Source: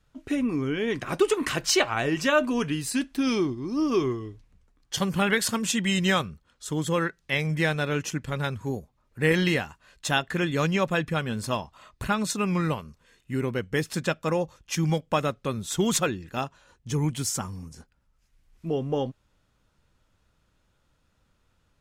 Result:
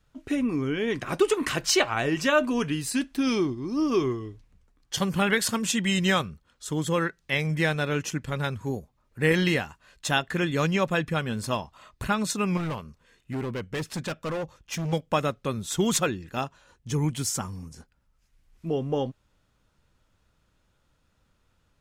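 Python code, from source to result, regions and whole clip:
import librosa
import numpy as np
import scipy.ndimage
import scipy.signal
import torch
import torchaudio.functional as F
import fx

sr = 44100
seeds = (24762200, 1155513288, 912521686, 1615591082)

y = fx.chain(x, sr, fx.high_shelf(hz=4500.0, db=-4.0),
    fx.clip_hard(threshold_db=-27.0), at=(12.57, 14.93))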